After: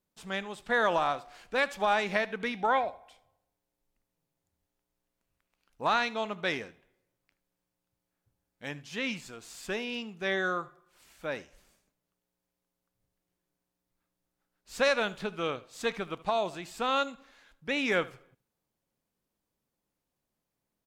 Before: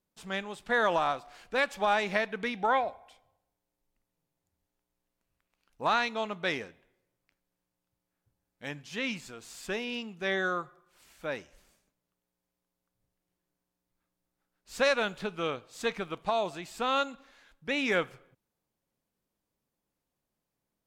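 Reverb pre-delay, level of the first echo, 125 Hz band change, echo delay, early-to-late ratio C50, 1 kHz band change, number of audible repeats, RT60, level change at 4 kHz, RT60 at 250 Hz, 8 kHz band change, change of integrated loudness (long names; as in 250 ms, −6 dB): no reverb audible, −20.0 dB, 0.0 dB, 76 ms, no reverb audible, 0.0 dB, 1, no reverb audible, 0.0 dB, no reverb audible, 0.0 dB, 0.0 dB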